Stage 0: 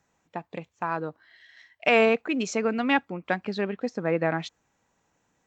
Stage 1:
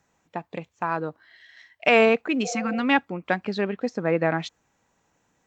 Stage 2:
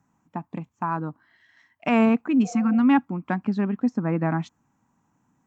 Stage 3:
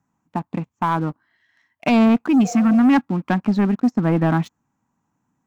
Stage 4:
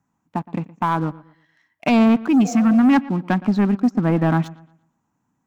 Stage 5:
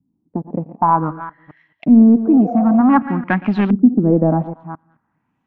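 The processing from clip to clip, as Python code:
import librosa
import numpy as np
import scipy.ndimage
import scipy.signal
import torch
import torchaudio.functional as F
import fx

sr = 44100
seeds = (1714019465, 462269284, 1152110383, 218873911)

y1 = fx.spec_repair(x, sr, seeds[0], start_s=2.47, length_s=0.32, low_hz=360.0, high_hz=900.0, source='after')
y1 = F.gain(torch.from_numpy(y1), 2.5).numpy()
y2 = fx.graphic_eq_10(y1, sr, hz=(125, 250, 500, 1000, 2000, 4000), db=(8, 12, -10, 8, -4, -9))
y2 = F.gain(torch.from_numpy(y2), -4.0).numpy()
y3 = fx.leveller(y2, sr, passes=2)
y4 = fx.echo_wet_lowpass(y3, sr, ms=117, feedback_pct=32, hz=3400.0, wet_db=-19.5)
y5 = fx.reverse_delay(y4, sr, ms=216, wet_db=-14.0)
y5 = fx.filter_lfo_lowpass(y5, sr, shape='saw_up', hz=0.54, low_hz=250.0, high_hz=3500.0, q=2.7)
y5 = F.gain(torch.from_numpy(y5), 1.0).numpy()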